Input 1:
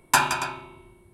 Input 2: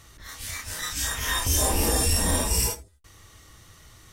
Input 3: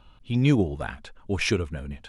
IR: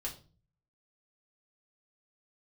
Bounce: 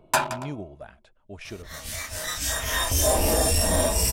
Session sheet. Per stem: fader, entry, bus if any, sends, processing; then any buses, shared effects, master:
+2.0 dB, 0.00 s, no send, adaptive Wiener filter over 25 samples; automatic ducking −23 dB, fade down 1.10 s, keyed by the third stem
+1.0 dB, 1.45 s, no send, no processing
−15.0 dB, 0.00 s, no send, no processing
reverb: not used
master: parametric band 630 Hz +12.5 dB 0.3 octaves; soft clipping −11.5 dBFS, distortion −21 dB

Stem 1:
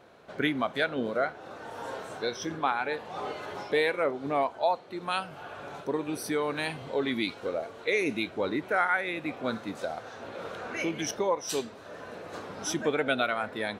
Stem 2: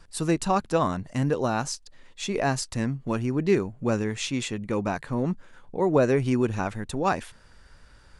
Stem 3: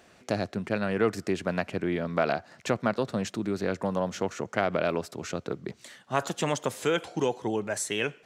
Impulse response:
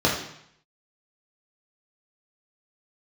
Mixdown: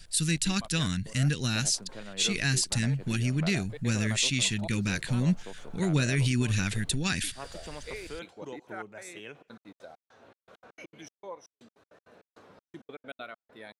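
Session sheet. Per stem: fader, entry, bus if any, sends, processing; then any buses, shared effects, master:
−16.5 dB, 0.00 s, bus A, no send, gate pattern "xx..x.x.x.xx..x" 199 BPM −60 dB
+2.5 dB, 0.00 s, bus A, no send, drawn EQ curve 170 Hz 0 dB, 600 Hz −23 dB, 1,100 Hz −19 dB, 1,600 Hz −1 dB, 3,800 Hz +10 dB, 5,900 Hz +7 dB, 8,700 Hz +10 dB
−15.5 dB, 1.25 s, no bus, no send, no processing
bus A: 0.0 dB, speech leveller 2 s; brickwall limiter −16 dBFS, peak gain reduction 9.5 dB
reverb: not used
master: no processing

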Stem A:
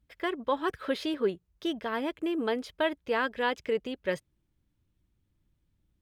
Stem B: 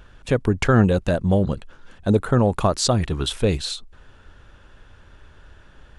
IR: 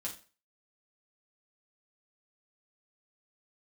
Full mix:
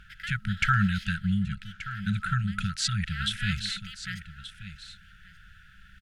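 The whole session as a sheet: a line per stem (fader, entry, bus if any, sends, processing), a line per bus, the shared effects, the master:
0:00.82 −5 dB → 0:01.47 −13.5 dB → 0:02.81 −13.5 dB → 0:03.44 −3.5 dB, 0.00 s, no send, echo send −20.5 dB, compressor on every frequency bin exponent 0.6
+1.0 dB, 0.00 s, no send, echo send −13.5 dB, bass and treble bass −9 dB, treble −10 dB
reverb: not used
echo: single-tap delay 1,179 ms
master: brick-wall band-stop 210–1,300 Hz

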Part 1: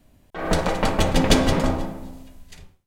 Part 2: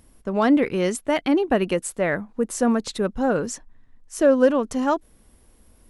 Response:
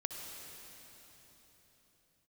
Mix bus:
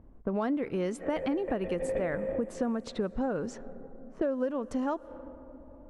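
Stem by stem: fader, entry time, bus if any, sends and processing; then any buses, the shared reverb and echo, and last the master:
0.0 dB, 0.65 s, send −8 dB, formant resonators in series e
0.0 dB, 0.00 s, send −19.5 dB, no processing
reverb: on, RT60 4.1 s, pre-delay 57 ms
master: high-shelf EQ 2,200 Hz −9.5 dB; low-pass that shuts in the quiet parts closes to 980 Hz, open at −18 dBFS; downward compressor 6 to 1, threshold −28 dBFS, peak gain reduction 15.5 dB

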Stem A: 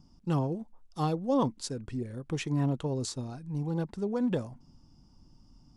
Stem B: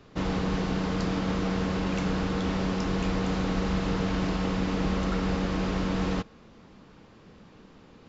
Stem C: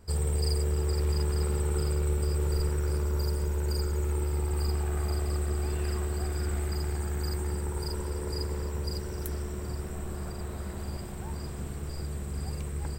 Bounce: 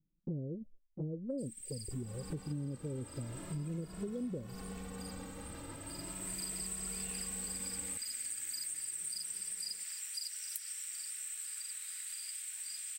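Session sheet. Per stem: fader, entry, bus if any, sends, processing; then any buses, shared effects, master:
+2.0 dB, 0.00 s, no send, Chebyshev low-pass filter 580 Hz, order 6; flanger swept by the level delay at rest 6.6 ms, full sweep at −26.5 dBFS
−19.5 dB, 1.75 s, no send, brickwall limiter −26 dBFS, peak gain reduction 10.5 dB; automatic gain control gain up to 10.5 dB; barber-pole flanger 2.3 ms +0.38 Hz
+3.0 dB, 1.30 s, no send, inverse Chebyshev high-pass filter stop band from 630 Hz, stop band 60 dB; parametric band 8,700 Hz +10.5 dB 0.4 octaves; hard clipping −22 dBFS, distortion −32 dB; automatic ducking −17 dB, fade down 1.95 s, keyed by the first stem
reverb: not used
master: noise gate with hold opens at −44 dBFS; downward compressor 6 to 1, threshold −37 dBFS, peak gain reduction 14 dB

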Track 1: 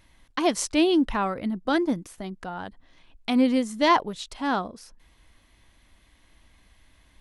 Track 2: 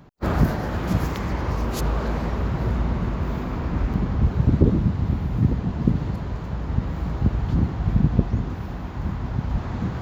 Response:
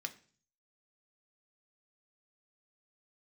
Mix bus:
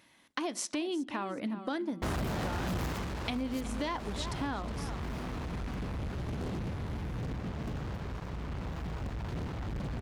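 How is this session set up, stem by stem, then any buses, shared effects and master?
−2.5 dB, 0.00 s, send −5.5 dB, echo send −12.5 dB, Chebyshev high-pass filter 190 Hz, order 2; downward compressor 2 to 1, threshold −31 dBFS, peak gain reduction 9 dB
0:02.84 −11.5 dB → 0:03.09 −20.5 dB, 1.80 s, no send, no echo send, fuzz pedal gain 33 dB, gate −33 dBFS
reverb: on, RT60 0.45 s, pre-delay 3 ms
echo: repeating echo 365 ms, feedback 24%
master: downward compressor 6 to 1, threshold −31 dBFS, peak gain reduction 8 dB

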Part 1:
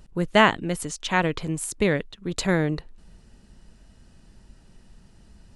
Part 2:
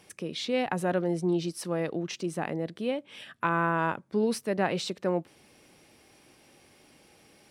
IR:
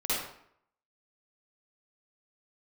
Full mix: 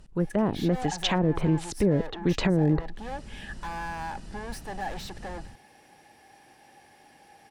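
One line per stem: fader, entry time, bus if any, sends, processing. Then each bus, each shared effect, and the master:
−1.5 dB, 0.00 s, no send, treble cut that deepens with the level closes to 440 Hz, closed at −18.5 dBFS; automatic gain control gain up to 11 dB
−1.5 dB, 0.20 s, no send, soft clipping −37.5 dBFS, distortion −3 dB; hollow resonant body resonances 810/1,700 Hz, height 16 dB, ringing for 30 ms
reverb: not used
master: brickwall limiter −14 dBFS, peak gain reduction 10.5 dB

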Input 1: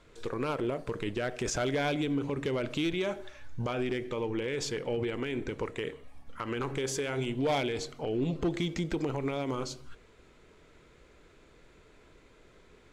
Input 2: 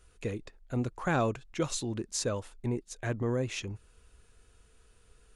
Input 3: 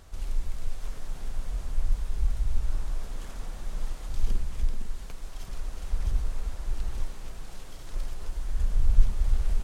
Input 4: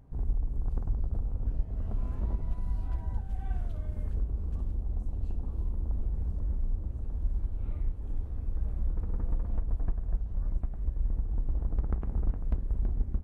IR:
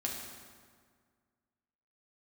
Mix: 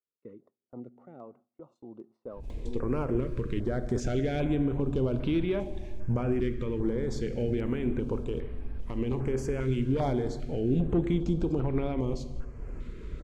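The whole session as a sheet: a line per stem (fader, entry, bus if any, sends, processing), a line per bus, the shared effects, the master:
−5.5 dB, 2.50 s, send −9.5 dB, low-shelf EQ 420 Hz +10.5 dB; upward compression, threshold −28 dBFS
−8.5 dB, 0.00 s, send −21 dB, Bessel high-pass filter 230 Hz, order 4; square-wave tremolo 0.57 Hz, depth 60%, duty 60%; Savitzky-Golay smoothing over 65 samples
−8.5 dB, 2.30 s, no send, hollow resonant body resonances 1,600/2,500 Hz, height 16 dB; downward compressor, threshold −27 dBFS, peak gain reduction 16.5 dB; string-ensemble chorus
−9.0 dB, 2.25 s, no send, no processing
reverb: on, RT60 1.8 s, pre-delay 4 ms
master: noise gate with hold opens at −45 dBFS; high-shelf EQ 3,800 Hz −8 dB; notch on a step sequencer 2.5 Hz 750–6,900 Hz

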